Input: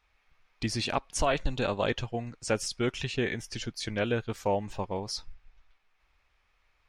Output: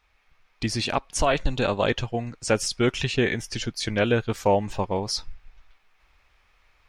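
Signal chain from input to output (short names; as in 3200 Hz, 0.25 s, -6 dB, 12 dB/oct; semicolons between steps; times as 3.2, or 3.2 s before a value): vocal rider 2 s; gain +6 dB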